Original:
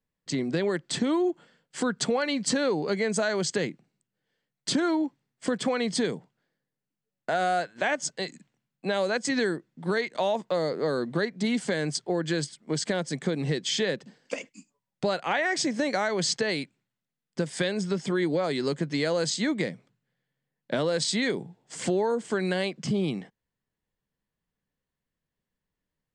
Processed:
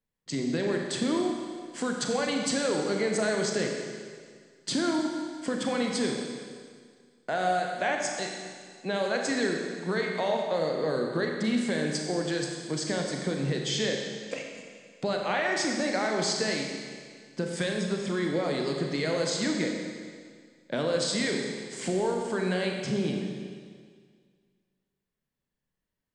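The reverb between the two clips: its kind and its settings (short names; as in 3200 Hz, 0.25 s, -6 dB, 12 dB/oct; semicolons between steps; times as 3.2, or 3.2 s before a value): Schroeder reverb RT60 1.9 s, combs from 29 ms, DRR 1 dB; gain -3.5 dB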